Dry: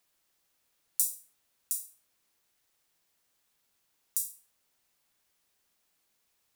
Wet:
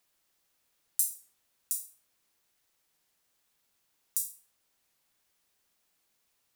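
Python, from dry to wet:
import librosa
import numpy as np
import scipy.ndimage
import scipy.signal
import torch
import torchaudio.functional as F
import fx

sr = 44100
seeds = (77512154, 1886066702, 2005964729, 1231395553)

y = fx.record_warp(x, sr, rpm=33.33, depth_cents=100.0)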